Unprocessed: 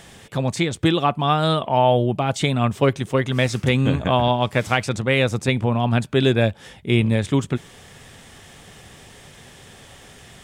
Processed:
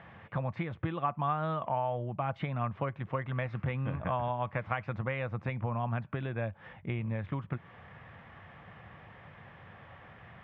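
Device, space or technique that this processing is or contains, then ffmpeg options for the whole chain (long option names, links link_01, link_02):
bass amplifier: -af "acompressor=threshold=-24dB:ratio=6,highpass=79,equalizer=frequency=93:width_type=q:width=4:gain=3,equalizer=frequency=260:width_type=q:width=4:gain=-8,equalizer=frequency=400:width_type=q:width=4:gain=-10,equalizer=frequency=1100:width_type=q:width=4:gain=5,lowpass=frequency=2200:width=0.5412,lowpass=frequency=2200:width=1.3066,volume=-4.5dB"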